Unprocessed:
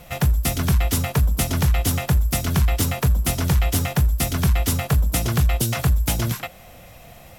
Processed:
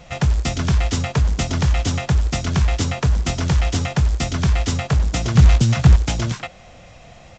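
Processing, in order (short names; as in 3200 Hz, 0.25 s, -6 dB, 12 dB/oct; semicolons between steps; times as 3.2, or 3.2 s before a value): 5.35–5.96 resonant low shelf 260 Hz +6.5 dB, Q 1.5; short-mantissa float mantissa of 2-bit; downsampling 16000 Hz; gain +1 dB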